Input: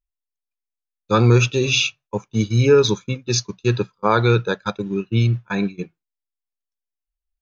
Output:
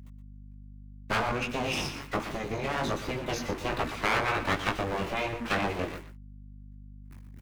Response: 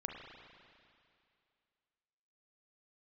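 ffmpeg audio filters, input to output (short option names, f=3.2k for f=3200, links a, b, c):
-filter_complex "[0:a]aeval=exprs='val(0)+0.5*0.0355*sgn(val(0))':c=same,equalizer=f=125:t=o:w=1:g=9,equalizer=f=250:t=o:w=1:g=12,equalizer=f=1k:t=o:w=1:g=8,equalizer=f=2k:t=o:w=1:g=9,equalizer=f=4k:t=o:w=1:g=-6,asettb=1/sr,asplit=3[a][b][c];[a]atrim=end=1.294[d];[b]atrim=start=1.29:end=3.71,asetpts=PTS-STARTPTS,afade=t=in:d=0.004:c=qsin,afade=t=out:st=2.416:d=0.004:c=qsin,acompressor=threshold=-12dB:ratio=3[e];[c]atrim=start=3.706[f];[d][e]acrossfade=d=0.004:c1=hsin:c2=qsin[g];[g][f]acrossfade=d=0.004:c1=qsin:c2=hsin,highshelf=f=5.5k:g=-6,aeval=exprs='abs(val(0))':c=same,highpass=f=88:p=1,agate=range=-32dB:threshold=-38dB:ratio=16:detection=peak,flanger=delay=17:depth=4.9:speed=1.3,acrossover=split=820|2900[h][i][j];[h]acompressor=threshold=-16dB:ratio=4[k];[i]acompressor=threshold=-24dB:ratio=4[l];[j]acompressor=threshold=-34dB:ratio=4[m];[k][l][m]amix=inputs=3:normalize=0,afftfilt=real='re*lt(hypot(re,im),0.398)':imag='im*lt(hypot(re,im),0.398)':win_size=1024:overlap=0.75,aecho=1:1:120:0.266,aeval=exprs='val(0)+0.00794*(sin(2*PI*50*n/s)+sin(2*PI*2*50*n/s)/2+sin(2*PI*3*50*n/s)/3+sin(2*PI*4*50*n/s)/4+sin(2*PI*5*50*n/s)/5)':c=same,volume=-3.5dB"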